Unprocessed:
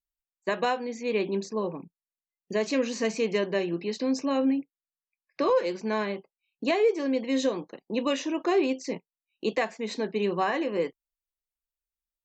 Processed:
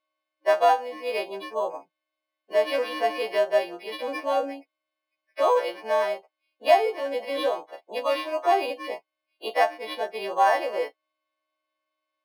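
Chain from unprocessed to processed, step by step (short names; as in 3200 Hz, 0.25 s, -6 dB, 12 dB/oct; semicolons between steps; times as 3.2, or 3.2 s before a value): frequency quantiser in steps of 2 st; resonant high-pass 680 Hz, resonance Q 4.9; decimation joined by straight lines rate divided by 6×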